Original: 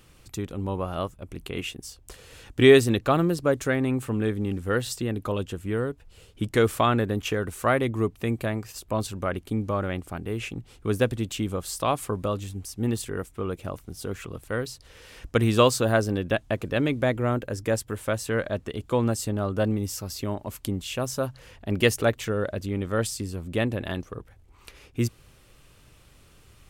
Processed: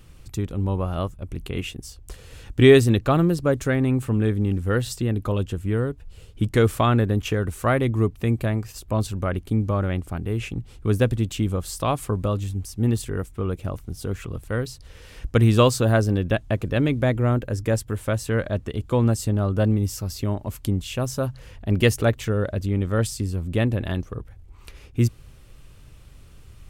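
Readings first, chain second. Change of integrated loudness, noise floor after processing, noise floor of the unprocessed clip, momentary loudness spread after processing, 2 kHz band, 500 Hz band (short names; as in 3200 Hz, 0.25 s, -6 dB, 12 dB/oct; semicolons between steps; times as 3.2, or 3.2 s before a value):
+3.5 dB, -47 dBFS, -55 dBFS, 12 LU, 0.0 dB, +1.5 dB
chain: low shelf 160 Hz +11.5 dB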